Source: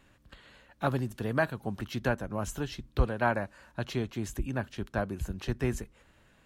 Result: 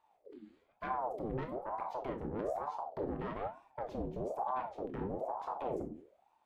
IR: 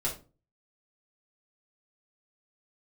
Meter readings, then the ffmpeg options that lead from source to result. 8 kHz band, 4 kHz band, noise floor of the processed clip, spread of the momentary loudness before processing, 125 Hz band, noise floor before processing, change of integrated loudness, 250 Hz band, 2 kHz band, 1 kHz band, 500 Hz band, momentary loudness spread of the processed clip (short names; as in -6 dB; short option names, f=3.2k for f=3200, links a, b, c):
under -20 dB, under -15 dB, -75 dBFS, 8 LU, -14.0 dB, -63 dBFS, -6.5 dB, -8.0 dB, -16.5 dB, -1.0 dB, -4.5 dB, 9 LU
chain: -filter_complex "[0:a]afwtdn=0.0112,lowshelf=f=340:g=10,alimiter=level_in=0.5dB:limit=-24dB:level=0:latency=1:release=115,volume=-0.5dB,asoftclip=type=tanh:threshold=-30dB,asplit=2[a][b];[1:a]atrim=start_sample=2205,adelay=23[c];[b][c]afir=irnorm=-1:irlink=0,volume=-10dB[d];[a][d]amix=inputs=2:normalize=0,aeval=exprs='val(0)*sin(2*PI*580*n/s+580*0.55/1.1*sin(2*PI*1.1*n/s))':c=same,volume=-2dB"